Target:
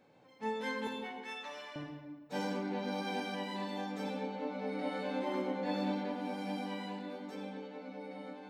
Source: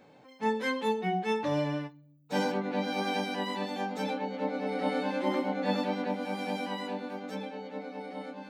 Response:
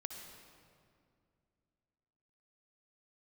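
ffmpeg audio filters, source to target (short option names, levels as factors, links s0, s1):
-filter_complex "[0:a]asettb=1/sr,asplit=3[s0][s1][s2];[s0]atrim=end=0.874[s3];[s1]atrim=start=0.87:end=1.76,asetpts=PTS-STARTPTS,afade=t=in:d=0.004:c=qsin,afade=t=out:st=0.886:d=0.004:c=qsin,highpass=1100[s4];[s2]atrim=start=1.756[s5];[s3][s4]acrossfade=d=0.004:c1=hsin:c2=qsin[s6];[s6][s5]acrossfade=d=0.004:c1=qsin:c2=hsin[s7];[1:a]atrim=start_sample=2205,asetrate=79380,aresample=44100[s8];[s7][s8]afir=irnorm=-1:irlink=0,volume=1.12"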